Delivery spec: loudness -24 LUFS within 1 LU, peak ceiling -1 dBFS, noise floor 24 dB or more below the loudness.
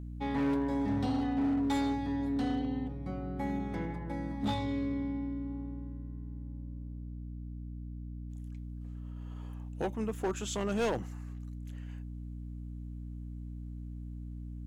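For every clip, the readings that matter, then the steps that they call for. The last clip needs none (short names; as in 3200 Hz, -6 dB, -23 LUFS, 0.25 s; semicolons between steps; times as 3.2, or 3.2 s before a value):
clipped 1.5%; flat tops at -26.0 dBFS; hum 60 Hz; harmonics up to 300 Hz; hum level -39 dBFS; loudness -36.5 LUFS; peak -26.0 dBFS; loudness target -24.0 LUFS
-> clip repair -26 dBFS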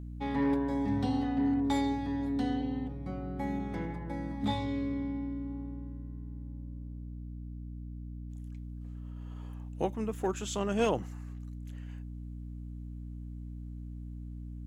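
clipped 0.0%; hum 60 Hz; harmonics up to 300 Hz; hum level -39 dBFS
-> de-hum 60 Hz, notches 5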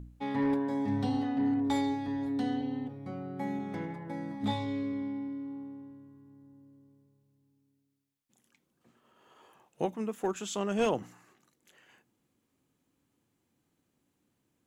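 hum none; loudness -33.0 LUFS; peak -17.0 dBFS; loudness target -24.0 LUFS
-> gain +9 dB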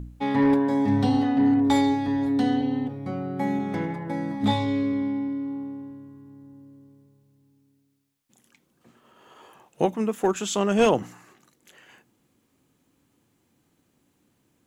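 loudness -24.5 LUFS; peak -8.0 dBFS; noise floor -69 dBFS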